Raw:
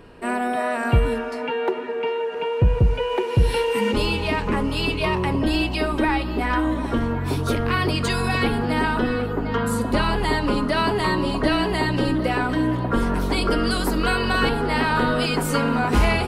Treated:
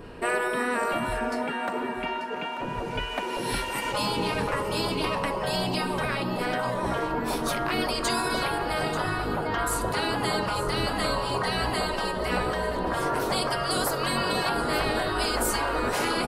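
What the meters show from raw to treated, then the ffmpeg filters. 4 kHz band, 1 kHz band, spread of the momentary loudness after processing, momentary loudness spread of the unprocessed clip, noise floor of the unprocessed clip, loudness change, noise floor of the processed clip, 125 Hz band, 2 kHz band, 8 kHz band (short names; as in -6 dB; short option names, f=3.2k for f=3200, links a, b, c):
-2.0 dB, -2.5 dB, 4 LU, 4 LU, -27 dBFS, -5.0 dB, -32 dBFS, -10.5 dB, -4.0 dB, +3.0 dB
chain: -filter_complex "[0:a]afftfilt=real='re*lt(hypot(re,im),0.251)':imag='im*lt(hypot(re,im),0.251)':win_size=1024:overlap=0.75,adynamicequalizer=threshold=0.00631:dfrequency=2700:dqfactor=0.91:tfrequency=2700:tqfactor=0.91:attack=5:release=100:ratio=0.375:range=3.5:mode=cutabove:tftype=bell,asplit=2[a][b];[b]aecho=0:1:888:0.224[c];[a][c]amix=inputs=2:normalize=0,volume=3.5dB"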